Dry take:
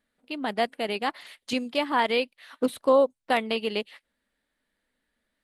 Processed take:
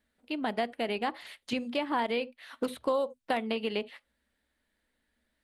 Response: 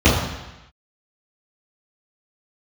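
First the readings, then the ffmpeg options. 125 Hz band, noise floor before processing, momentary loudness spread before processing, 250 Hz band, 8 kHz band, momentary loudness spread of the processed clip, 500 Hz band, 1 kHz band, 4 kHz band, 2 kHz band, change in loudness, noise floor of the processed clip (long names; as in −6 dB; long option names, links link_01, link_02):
can't be measured, −81 dBFS, 12 LU, −3.5 dB, −7.0 dB, 7 LU, −6.5 dB, −5.5 dB, −6.5 dB, −6.0 dB, −6.0 dB, −80 dBFS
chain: -filter_complex "[0:a]bandreject=frequency=1200:width=22,asplit=2[link_01][link_02];[1:a]atrim=start_sample=2205,atrim=end_sample=3528,lowshelf=frequency=99:gain=11.5[link_03];[link_02][link_03]afir=irnorm=-1:irlink=0,volume=-43dB[link_04];[link_01][link_04]amix=inputs=2:normalize=0,acrossover=split=960|3200[link_05][link_06][link_07];[link_05]acompressor=threshold=-29dB:ratio=4[link_08];[link_06]acompressor=threshold=-36dB:ratio=4[link_09];[link_07]acompressor=threshold=-49dB:ratio=4[link_10];[link_08][link_09][link_10]amix=inputs=3:normalize=0"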